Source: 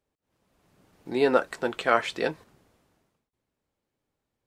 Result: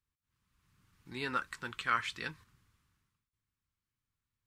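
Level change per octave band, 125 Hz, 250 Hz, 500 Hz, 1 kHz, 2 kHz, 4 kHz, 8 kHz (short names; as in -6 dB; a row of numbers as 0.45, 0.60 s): -5.5, -15.0, -22.5, -8.0, -6.0, -6.0, -6.0 dB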